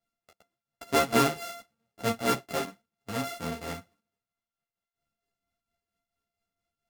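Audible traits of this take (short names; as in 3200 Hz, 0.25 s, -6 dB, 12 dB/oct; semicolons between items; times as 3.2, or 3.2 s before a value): a buzz of ramps at a fixed pitch in blocks of 64 samples; tremolo triangle 4.4 Hz, depth 60%; a shimmering, thickened sound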